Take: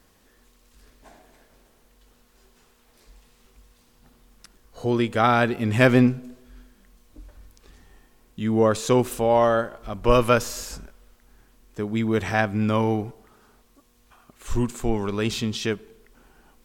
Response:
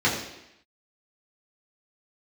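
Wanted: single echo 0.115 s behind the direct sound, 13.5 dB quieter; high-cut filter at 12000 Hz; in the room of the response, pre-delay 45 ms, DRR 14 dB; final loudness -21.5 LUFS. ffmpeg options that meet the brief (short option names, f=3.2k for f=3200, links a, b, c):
-filter_complex "[0:a]lowpass=12k,aecho=1:1:115:0.211,asplit=2[a][b];[1:a]atrim=start_sample=2205,adelay=45[c];[b][c]afir=irnorm=-1:irlink=0,volume=-30dB[d];[a][d]amix=inputs=2:normalize=0,volume=1dB"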